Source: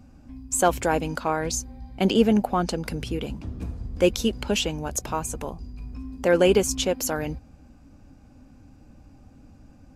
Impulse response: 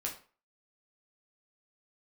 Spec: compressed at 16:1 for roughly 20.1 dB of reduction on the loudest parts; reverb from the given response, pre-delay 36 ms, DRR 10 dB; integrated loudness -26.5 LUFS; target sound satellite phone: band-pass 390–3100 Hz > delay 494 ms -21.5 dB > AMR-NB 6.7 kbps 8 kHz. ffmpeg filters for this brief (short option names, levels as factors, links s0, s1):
-filter_complex "[0:a]acompressor=threshold=0.02:ratio=16,asplit=2[s0][s1];[1:a]atrim=start_sample=2205,adelay=36[s2];[s1][s2]afir=irnorm=-1:irlink=0,volume=0.266[s3];[s0][s3]amix=inputs=2:normalize=0,highpass=390,lowpass=3100,aecho=1:1:494:0.0841,volume=8.41" -ar 8000 -c:a libopencore_amrnb -b:a 6700